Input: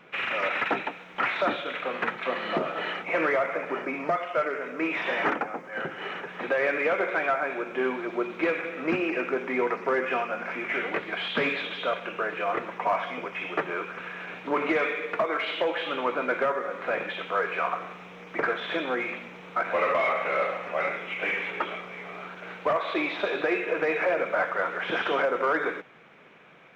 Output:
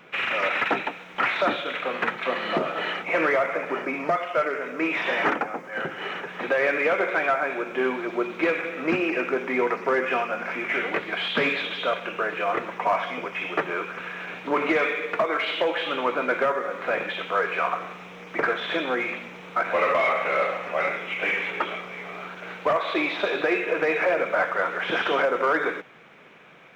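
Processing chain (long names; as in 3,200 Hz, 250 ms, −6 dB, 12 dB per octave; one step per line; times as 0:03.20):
high-shelf EQ 4,800 Hz +5.5 dB
level +2.5 dB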